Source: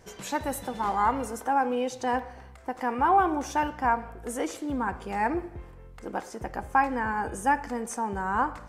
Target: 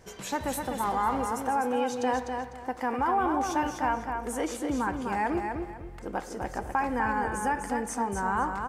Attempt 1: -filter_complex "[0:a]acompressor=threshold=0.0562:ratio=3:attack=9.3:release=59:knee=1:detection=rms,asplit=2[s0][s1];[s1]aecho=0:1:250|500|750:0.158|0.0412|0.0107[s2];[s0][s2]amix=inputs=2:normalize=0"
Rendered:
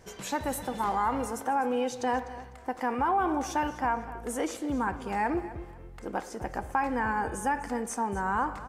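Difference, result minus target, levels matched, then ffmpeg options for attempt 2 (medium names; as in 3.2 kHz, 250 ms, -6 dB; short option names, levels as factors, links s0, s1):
echo-to-direct -10.5 dB
-filter_complex "[0:a]acompressor=threshold=0.0562:ratio=3:attack=9.3:release=59:knee=1:detection=rms,asplit=2[s0][s1];[s1]aecho=0:1:250|500|750:0.531|0.138|0.0359[s2];[s0][s2]amix=inputs=2:normalize=0"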